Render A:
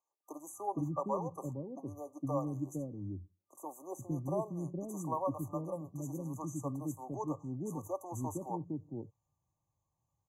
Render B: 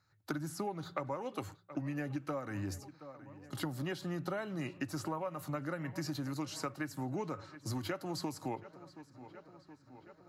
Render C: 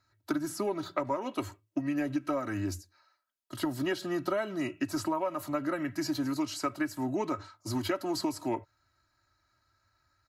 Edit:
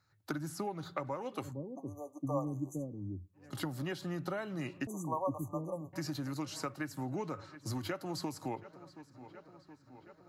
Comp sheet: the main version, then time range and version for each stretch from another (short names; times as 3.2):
B
1.49–3.41 from A, crossfade 0.16 s
4.87–5.93 from A
not used: C